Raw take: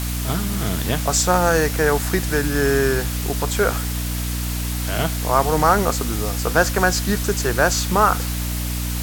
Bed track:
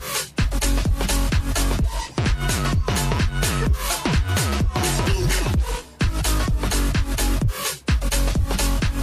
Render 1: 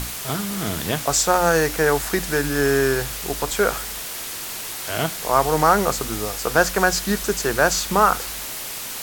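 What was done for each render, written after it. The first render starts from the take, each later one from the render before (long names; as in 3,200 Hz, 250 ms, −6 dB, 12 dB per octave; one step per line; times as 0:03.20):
mains-hum notches 60/120/180/240/300 Hz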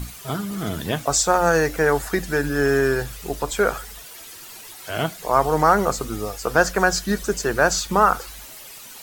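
broadband denoise 12 dB, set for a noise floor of −31 dBFS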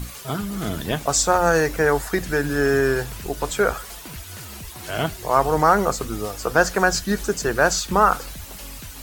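mix in bed track −18.5 dB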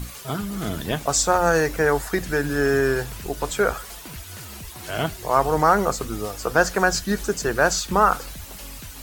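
level −1 dB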